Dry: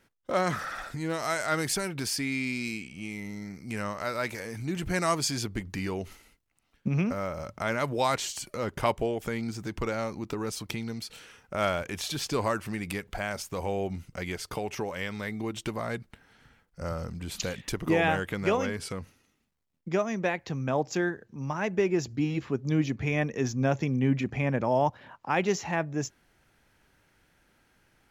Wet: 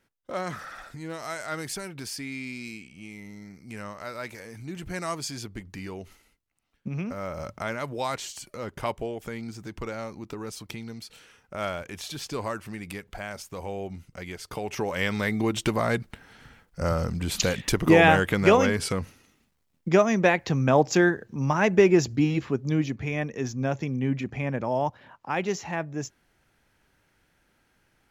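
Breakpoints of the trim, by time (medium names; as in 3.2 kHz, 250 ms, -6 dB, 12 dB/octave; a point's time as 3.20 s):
7.04 s -5 dB
7.47 s +3 dB
7.76 s -3.5 dB
14.38 s -3.5 dB
15.07 s +8 dB
21.91 s +8 dB
23.08 s -1.5 dB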